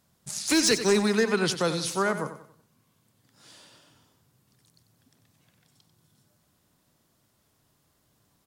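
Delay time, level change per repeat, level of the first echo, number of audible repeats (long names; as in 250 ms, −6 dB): 93 ms, −8.5 dB, −11.0 dB, 3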